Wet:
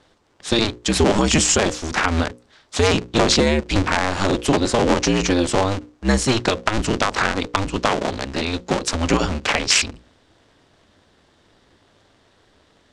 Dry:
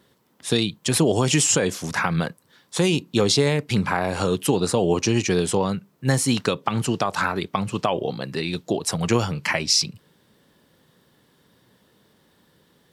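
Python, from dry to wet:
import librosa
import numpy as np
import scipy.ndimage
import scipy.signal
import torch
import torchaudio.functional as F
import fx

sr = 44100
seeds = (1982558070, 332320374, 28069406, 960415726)

y = fx.cycle_switch(x, sr, every=2, mode='inverted')
y = scipy.signal.sosfilt(scipy.signal.butter(4, 7800.0, 'lowpass', fs=sr, output='sos'), y)
y = fx.hum_notches(y, sr, base_hz=60, count=9)
y = F.gain(torch.from_numpy(y), 3.5).numpy()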